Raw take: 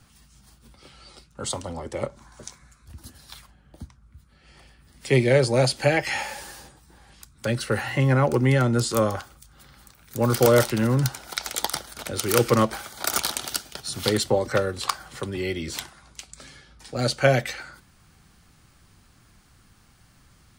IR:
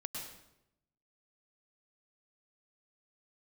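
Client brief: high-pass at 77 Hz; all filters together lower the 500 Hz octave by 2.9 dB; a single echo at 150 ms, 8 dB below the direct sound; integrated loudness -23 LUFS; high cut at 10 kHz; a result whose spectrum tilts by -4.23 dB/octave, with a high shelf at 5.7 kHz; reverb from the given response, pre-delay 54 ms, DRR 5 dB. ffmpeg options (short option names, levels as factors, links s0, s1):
-filter_complex "[0:a]highpass=77,lowpass=10000,equalizer=f=500:t=o:g=-3.5,highshelf=f=5700:g=7.5,aecho=1:1:150:0.398,asplit=2[s0][s1];[1:a]atrim=start_sample=2205,adelay=54[s2];[s1][s2]afir=irnorm=-1:irlink=0,volume=0.596[s3];[s0][s3]amix=inputs=2:normalize=0,volume=0.944"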